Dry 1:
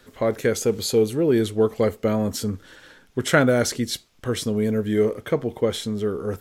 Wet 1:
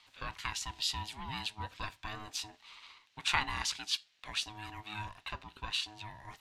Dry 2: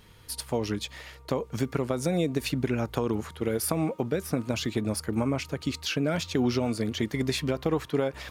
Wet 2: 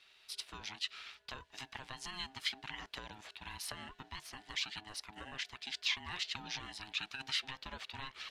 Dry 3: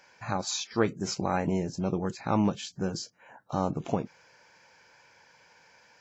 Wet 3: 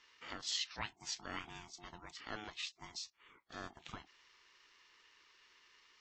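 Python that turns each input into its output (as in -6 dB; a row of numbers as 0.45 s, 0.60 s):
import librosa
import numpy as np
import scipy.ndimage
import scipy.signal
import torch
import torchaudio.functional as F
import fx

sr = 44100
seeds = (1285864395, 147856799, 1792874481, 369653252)

y = fx.bandpass_q(x, sr, hz=3200.0, q=1.7)
y = y * np.sin(2.0 * np.pi * 530.0 * np.arange(len(y)) / sr)
y = F.gain(torch.from_numpy(y), 2.5).numpy()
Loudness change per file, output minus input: -14.5 LU, -12.5 LU, -14.0 LU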